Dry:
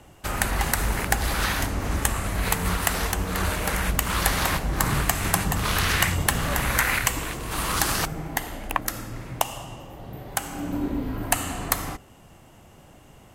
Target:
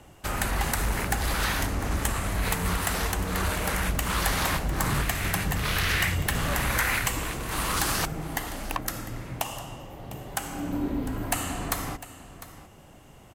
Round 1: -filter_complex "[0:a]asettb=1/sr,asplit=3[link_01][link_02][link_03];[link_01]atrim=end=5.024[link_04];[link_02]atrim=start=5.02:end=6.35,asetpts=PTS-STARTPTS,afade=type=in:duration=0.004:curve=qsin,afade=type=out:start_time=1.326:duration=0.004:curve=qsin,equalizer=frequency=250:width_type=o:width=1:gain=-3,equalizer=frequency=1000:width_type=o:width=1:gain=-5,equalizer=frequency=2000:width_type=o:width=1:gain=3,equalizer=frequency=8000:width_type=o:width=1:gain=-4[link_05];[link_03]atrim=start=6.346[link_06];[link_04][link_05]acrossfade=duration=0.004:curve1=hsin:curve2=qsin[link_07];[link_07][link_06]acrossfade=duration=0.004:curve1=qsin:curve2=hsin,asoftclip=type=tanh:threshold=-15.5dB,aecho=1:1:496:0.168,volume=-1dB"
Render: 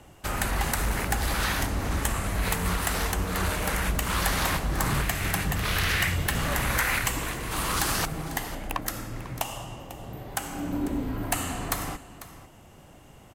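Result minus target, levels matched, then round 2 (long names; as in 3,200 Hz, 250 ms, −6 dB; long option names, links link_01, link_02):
echo 206 ms early
-filter_complex "[0:a]asettb=1/sr,asplit=3[link_01][link_02][link_03];[link_01]atrim=end=5.024[link_04];[link_02]atrim=start=5.02:end=6.35,asetpts=PTS-STARTPTS,afade=type=in:duration=0.004:curve=qsin,afade=type=out:start_time=1.326:duration=0.004:curve=qsin,equalizer=frequency=250:width_type=o:width=1:gain=-3,equalizer=frequency=1000:width_type=o:width=1:gain=-5,equalizer=frequency=2000:width_type=o:width=1:gain=3,equalizer=frequency=8000:width_type=o:width=1:gain=-4[link_05];[link_03]atrim=start=6.346[link_06];[link_04][link_05]acrossfade=duration=0.004:curve1=hsin:curve2=qsin[link_07];[link_07][link_06]acrossfade=duration=0.004:curve1=qsin:curve2=hsin,asoftclip=type=tanh:threshold=-15.5dB,aecho=1:1:702:0.168,volume=-1dB"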